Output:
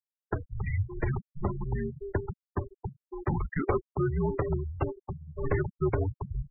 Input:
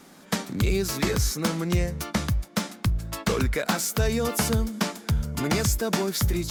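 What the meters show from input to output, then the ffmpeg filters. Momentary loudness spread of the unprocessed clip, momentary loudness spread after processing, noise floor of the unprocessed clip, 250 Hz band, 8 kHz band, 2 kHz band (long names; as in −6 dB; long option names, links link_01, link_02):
4 LU, 9 LU, −50 dBFS, −7.5 dB, below −40 dB, −10.0 dB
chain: -af "highpass=frequency=180:width_type=q:width=0.5412,highpass=frequency=180:width_type=q:width=1.307,lowpass=frequency=3300:width_type=q:width=0.5176,lowpass=frequency=3300:width_type=q:width=0.7071,lowpass=frequency=3300:width_type=q:width=1.932,afreqshift=-300,equalizer=frequency=390:width_type=o:width=0.32:gain=12,afftfilt=real='re*gte(hypot(re,im),0.0891)':imag='im*gte(hypot(re,im),0.0891)':win_size=1024:overlap=0.75,volume=-2.5dB"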